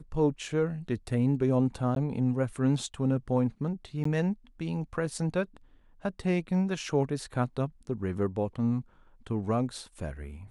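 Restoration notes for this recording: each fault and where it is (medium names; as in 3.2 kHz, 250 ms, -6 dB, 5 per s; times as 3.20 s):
1.95–1.96 s: dropout 12 ms
4.04–4.05 s: dropout 14 ms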